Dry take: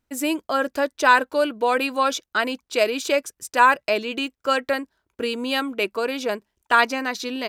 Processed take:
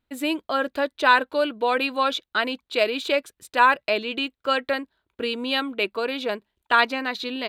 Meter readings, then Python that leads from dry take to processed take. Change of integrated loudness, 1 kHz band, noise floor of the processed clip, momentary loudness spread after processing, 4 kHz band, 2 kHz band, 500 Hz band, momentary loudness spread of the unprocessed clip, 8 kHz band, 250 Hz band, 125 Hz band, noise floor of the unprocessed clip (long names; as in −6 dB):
−1.5 dB, −1.5 dB, −83 dBFS, 10 LU, +1.5 dB, −1.0 dB, −2.0 dB, 10 LU, −11.0 dB, −2.0 dB, can't be measured, −81 dBFS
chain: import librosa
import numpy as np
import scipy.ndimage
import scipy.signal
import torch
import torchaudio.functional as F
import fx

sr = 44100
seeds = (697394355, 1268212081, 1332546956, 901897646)

y = fx.high_shelf_res(x, sr, hz=4700.0, db=-6.0, q=3.0)
y = y * 10.0 ** (-2.0 / 20.0)